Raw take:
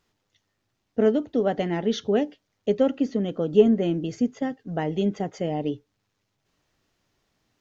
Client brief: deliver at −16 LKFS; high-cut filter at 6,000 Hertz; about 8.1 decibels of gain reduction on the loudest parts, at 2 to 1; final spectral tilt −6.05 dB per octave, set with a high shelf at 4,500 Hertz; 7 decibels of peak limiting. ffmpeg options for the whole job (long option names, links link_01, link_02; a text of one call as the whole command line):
ffmpeg -i in.wav -af "lowpass=6000,highshelf=frequency=4500:gain=6.5,acompressor=threshold=-25dB:ratio=2,volume=14.5dB,alimiter=limit=-4.5dB:level=0:latency=1" out.wav